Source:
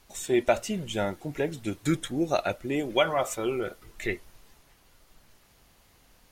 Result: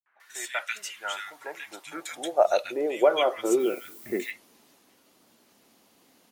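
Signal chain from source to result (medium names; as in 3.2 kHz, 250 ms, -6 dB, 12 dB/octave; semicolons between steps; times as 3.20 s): 3.39–4.10 s: added noise violet -48 dBFS; high-pass sweep 1.6 kHz -> 240 Hz, 0.65–3.98 s; three bands offset in time lows, mids, highs 60/200 ms, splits 160/1700 Hz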